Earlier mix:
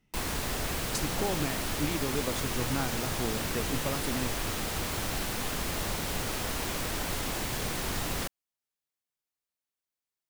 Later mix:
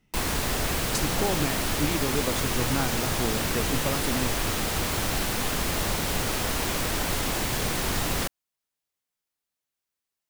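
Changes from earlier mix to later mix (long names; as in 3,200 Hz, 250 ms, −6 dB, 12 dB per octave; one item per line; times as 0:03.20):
speech +4.0 dB
background +5.5 dB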